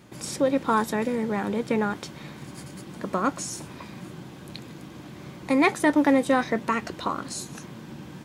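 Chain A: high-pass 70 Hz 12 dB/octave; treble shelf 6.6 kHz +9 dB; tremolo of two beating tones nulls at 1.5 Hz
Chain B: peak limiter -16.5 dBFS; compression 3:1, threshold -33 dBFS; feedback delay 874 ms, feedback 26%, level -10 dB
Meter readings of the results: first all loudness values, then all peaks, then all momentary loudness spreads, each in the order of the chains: -28.0 LUFS, -36.5 LUFS; -7.5 dBFS, -20.5 dBFS; 20 LU, 6 LU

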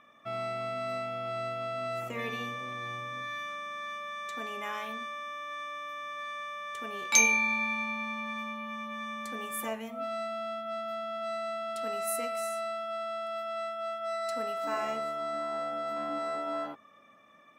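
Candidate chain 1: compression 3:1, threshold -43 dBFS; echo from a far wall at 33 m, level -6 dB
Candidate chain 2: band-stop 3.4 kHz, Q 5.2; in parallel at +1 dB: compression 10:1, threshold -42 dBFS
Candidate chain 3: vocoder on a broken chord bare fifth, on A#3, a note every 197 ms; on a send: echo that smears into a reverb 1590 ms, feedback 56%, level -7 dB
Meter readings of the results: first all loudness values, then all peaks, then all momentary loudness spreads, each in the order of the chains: -43.0 LUFS, -31.0 LUFS, -34.5 LUFS; -20.0 dBFS, -5.5 dBFS, -14.0 dBFS; 2 LU, 5 LU, 7 LU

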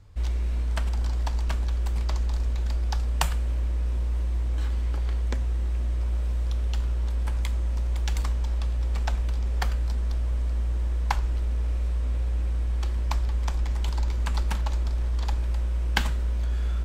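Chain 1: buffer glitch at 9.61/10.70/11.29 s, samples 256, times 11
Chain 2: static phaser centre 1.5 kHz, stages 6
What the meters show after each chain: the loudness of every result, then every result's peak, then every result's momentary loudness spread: -28.5 LUFS, -28.5 LUFS; -5.5 dBFS, -8.5 dBFS; 1 LU, 1 LU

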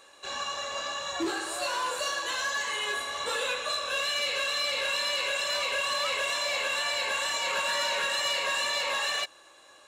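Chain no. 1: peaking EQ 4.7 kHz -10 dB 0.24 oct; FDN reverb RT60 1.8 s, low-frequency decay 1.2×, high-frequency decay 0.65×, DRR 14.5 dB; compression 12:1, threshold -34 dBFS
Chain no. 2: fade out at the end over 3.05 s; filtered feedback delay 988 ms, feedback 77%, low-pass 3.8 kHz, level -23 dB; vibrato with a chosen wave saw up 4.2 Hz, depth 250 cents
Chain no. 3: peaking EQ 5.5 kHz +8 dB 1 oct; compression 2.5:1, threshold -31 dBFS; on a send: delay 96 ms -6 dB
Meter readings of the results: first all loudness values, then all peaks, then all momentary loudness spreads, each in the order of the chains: -35.5 LUFS, -29.0 LUFS, -29.0 LUFS; -27.0 dBFS, -21.5 dBFS, -20.0 dBFS; 2 LU, 7 LU, 3 LU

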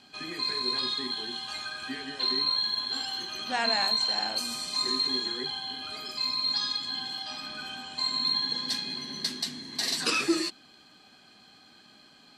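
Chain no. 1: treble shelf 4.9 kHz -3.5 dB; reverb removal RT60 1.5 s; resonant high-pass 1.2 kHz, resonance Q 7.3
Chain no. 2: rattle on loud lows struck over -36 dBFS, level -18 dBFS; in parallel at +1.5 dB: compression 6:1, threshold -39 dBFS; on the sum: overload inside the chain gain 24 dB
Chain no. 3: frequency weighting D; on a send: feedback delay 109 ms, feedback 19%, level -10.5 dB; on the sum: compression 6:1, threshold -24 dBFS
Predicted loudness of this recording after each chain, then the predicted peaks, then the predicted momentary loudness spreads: -30.0 LUFS, -27.0 LUFS, -24.5 LUFS; -11.0 dBFS, -24.0 dBFS, -11.5 dBFS; 11 LU, 8 LU, 20 LU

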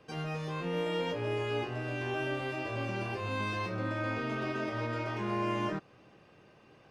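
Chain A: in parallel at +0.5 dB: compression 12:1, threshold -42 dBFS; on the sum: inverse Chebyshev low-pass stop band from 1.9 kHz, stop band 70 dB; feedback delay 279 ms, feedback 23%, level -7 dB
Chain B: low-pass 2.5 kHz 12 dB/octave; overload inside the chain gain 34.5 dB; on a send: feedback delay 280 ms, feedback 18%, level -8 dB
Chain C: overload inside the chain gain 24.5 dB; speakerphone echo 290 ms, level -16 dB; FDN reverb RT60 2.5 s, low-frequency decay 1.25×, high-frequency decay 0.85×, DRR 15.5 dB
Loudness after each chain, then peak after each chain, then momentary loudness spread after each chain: -35.5 LUFS, -37.5 LUFS, -34.5 LUFS; -23.0 dBFS, -31.0 dBFS, -23.0 dBFS; 4 LU, 3 LU, 3 LU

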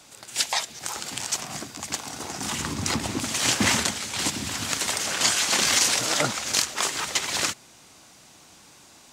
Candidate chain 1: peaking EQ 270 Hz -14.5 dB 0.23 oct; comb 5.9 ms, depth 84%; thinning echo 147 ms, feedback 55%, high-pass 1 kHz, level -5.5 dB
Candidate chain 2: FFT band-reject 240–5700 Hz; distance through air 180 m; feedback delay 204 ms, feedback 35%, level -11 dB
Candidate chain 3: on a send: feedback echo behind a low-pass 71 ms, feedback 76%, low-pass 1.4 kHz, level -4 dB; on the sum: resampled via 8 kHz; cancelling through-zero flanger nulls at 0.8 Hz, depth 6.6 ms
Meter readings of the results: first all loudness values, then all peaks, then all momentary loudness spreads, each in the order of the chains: -21.0 LUFS, -38.0 LUFS, -30.5 LUFS; -3.5 dBFS, -15.0 dBFS, -12.0 dBFS; 12 LU, 13 LU, 12 LU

